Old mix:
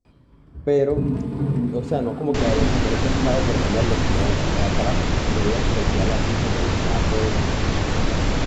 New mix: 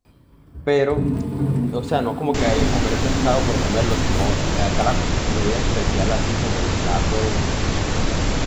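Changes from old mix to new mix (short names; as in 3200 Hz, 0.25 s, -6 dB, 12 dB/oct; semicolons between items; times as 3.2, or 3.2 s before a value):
speech: add band shelf 1800 Hz +11.5 dB 2.7 oct; first sound: send on; master: remove air absorption 67 m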